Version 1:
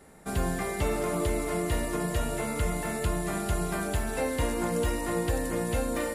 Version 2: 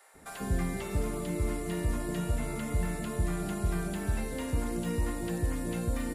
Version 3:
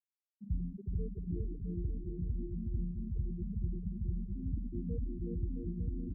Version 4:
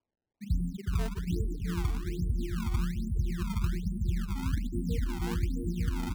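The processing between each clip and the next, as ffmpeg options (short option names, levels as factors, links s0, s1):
-filter_complex "[0:a]acrossover=split=320|3000[s0][s1][s2];[s1]acompressor=threshold=0.0126:ratio=6[s3];[s0][s3][s2]amix=inputs=3:normalize=0,acrossover=split=620[s4][s5];[s4]adelay=140[s6];[s6][s5]amix=inputs=2:normalize=0,acrossover=split=2700[s7][s8];[s8]acompressor=threshold=0.00562:ratio=4:attack=1:release=60[s9];[s7][s9]amix=inputs=2:normalize=0"
-af "afftfilt=real='re*gte(hypot(re,im),0.141)':imag='im*gte(hypot(re,im),0.141)':win_size=1024:overlap=0.75,aecho=1:1:370|666|902.8|1092|1244:0.631|0.398|0.251|0.158|0.1,volume=0.562"
-af "acrusher=samples=22:mix=1:aa=0.000001:lfo=1:lforange=35.2:lforate=1.2,volume=2"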